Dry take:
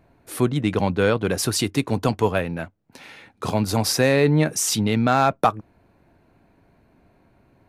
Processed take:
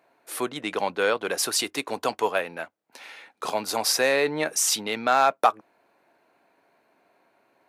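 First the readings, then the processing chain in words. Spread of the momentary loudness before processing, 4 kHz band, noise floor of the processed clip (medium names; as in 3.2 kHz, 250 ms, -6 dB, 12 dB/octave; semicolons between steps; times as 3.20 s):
12 LU, 0.0 dB, -68 dBFS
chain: high-pass 530 Hz 12 dB/octave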